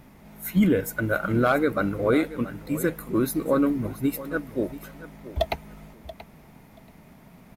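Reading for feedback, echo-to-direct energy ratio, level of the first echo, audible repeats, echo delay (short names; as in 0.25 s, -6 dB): 17%, -15.5 dB, -15.5 dB, 2, 0.681 s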